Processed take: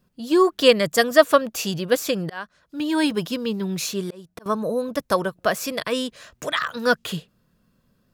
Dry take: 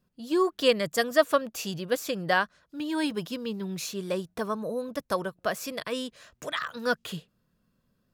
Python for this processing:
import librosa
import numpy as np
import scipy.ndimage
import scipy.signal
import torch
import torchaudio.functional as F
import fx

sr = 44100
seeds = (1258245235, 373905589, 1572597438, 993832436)

y = fx.auto_swell(x, sr, attack_ms=543.0, at=(2.21, 4.46))
y = F.gain(torch.from_numpy(y), 7.5).numpy()